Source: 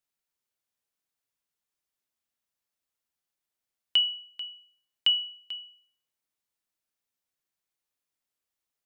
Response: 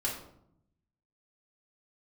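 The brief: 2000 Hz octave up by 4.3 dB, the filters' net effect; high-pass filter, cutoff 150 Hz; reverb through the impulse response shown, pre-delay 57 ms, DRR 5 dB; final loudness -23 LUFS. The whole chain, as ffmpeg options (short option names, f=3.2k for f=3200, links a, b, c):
-filter_complex "[0:a]highpass=150,equalizer=f=2k:t=o:g=6.5,asplit=2[a][b];[1:a]atrim=start_sample=2205,adelay=57[c];[b][c]afir=irnorm=-1:irlink=0,volume=-10dB[d];[a][d]amix=inputs=2:normalize=0,volume=1dB"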